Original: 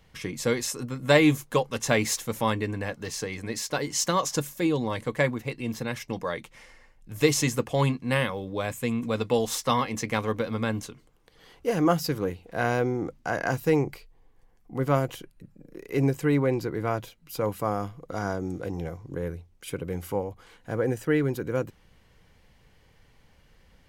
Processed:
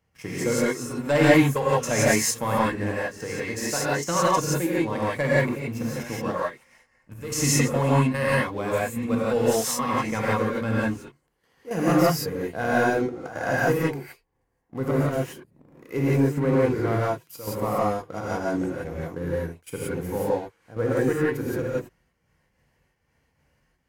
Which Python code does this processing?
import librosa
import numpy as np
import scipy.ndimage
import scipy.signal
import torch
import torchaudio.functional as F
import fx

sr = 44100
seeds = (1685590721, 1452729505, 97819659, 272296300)

y = scipy.signal.sosfilt(scipy.signal.butter(2, 58.0, 'highpass', fs=sr, output='sos'), x)
y = fx.peak_eq(y, sr, hz=3700.0, db=-10.0, octaves=0.52)
y = fx.leveller(y, sr, passes=2)
y = fx.step_gate(y, sr, bpm=164, pattern='x.xxxx..x', floor_db=-12.0, edge_ms=4.5)
y = fx.rev_gated(y, sr, seeds[0], gate_ms=200, shape='rising', drr_db=-7.5)
y = y * 10.0 ** (-9.0 / 20.0)